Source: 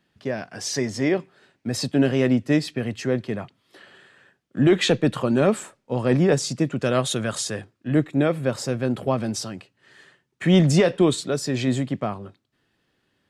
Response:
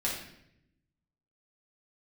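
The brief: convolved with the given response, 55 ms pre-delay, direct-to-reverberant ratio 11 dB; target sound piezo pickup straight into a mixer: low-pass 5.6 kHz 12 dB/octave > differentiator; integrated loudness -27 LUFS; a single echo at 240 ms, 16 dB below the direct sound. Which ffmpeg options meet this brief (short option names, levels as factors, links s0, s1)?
-filter_complex "[0:a]aecho=1:1:240:0.158,asplit=2[s0][s1];[1:a]atrim=start_sample=2205,adelay=55[s2];[s1][s2]afir=irnorm=-1:irlink=0,volume=0.133[s3];[s0][s3]amix=inputs=2:normalize=0,lowpass=5600,aderivative,volume=3.76"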